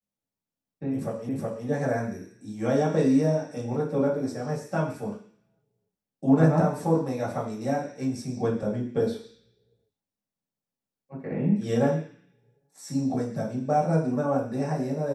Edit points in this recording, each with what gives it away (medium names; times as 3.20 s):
1.29 s: repeat of the last 0.37 s